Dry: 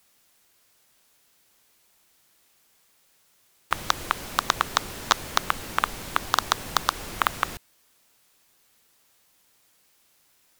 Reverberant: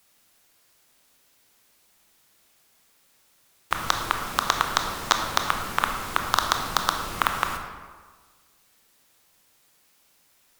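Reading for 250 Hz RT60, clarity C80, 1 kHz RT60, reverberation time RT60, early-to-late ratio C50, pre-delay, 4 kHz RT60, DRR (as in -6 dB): 1.4 s, 7.0 dB, 1.5 s, 1.5 s, 5.5 dB, 20 ms, 0.90 s, 3.5 dB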